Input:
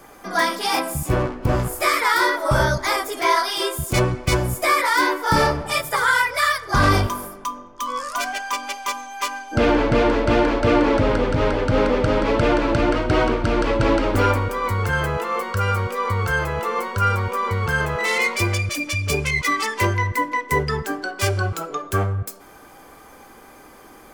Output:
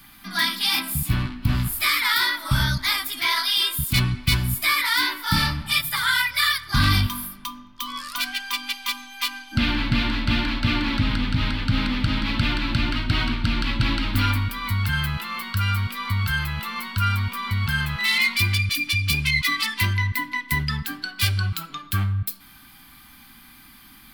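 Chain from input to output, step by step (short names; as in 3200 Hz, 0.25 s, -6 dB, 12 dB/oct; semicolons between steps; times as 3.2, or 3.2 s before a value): EQ curve 250 Hz 0 dB, 460 Hz -30 dB, 890 Hz -11 dB, 4100 Hz +9 dB, 6500 Hz -8 dB, 13000 Hz +7 dB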